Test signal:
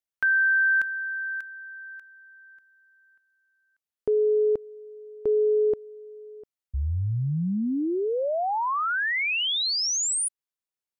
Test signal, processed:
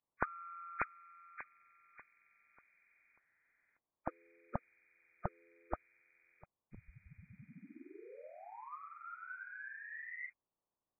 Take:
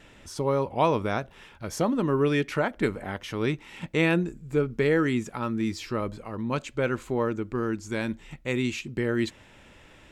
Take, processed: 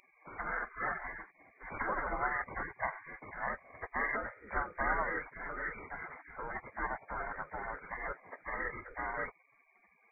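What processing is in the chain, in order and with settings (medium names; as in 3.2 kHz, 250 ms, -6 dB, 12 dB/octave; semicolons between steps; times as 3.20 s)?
knee-point frequency compression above 1.2 kHz 4:1; spectral gate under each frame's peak -25 dB weak; trim +12 dB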